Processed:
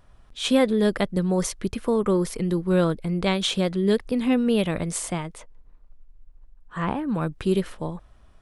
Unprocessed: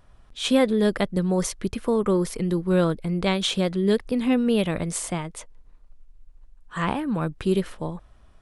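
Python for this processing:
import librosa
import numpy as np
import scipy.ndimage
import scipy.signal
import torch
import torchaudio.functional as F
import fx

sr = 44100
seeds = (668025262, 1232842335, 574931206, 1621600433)

y = fx.high_shelf(x, sr, hz=fx.line((5.36, 3800.0), (7.08, 2200.0)), db=-10.5, at=(5.36, 7.08), fade=0.02)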